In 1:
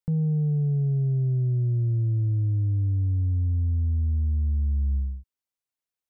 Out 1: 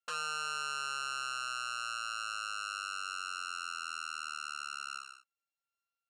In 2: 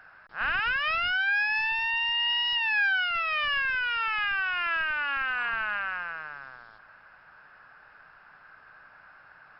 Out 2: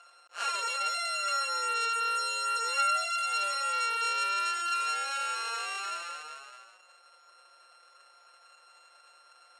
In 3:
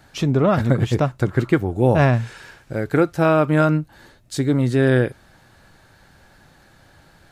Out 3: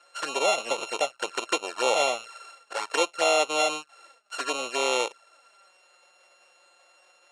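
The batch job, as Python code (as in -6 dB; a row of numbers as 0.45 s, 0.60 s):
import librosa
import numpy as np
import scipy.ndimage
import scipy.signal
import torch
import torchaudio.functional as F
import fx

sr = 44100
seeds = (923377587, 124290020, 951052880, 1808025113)

y = np.r_[np.sort(x[:len(x) // 32 * 32].reshape(-1, 32), axis=1).ravel(), x[len(x) // 32 * 32:]]
y = fx.env_flanger(y, sr, rest_ms=5.9, full_db=-15.0)
y = scipy.signal.sosfilt(scipy.signal.ellip(3, 1.0, 70, [520.0, 8600.0], 'bandpass', fs=sr, output='sos'), y)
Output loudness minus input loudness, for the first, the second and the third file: -12.5 LU, -3.5 LU, -7.5 LU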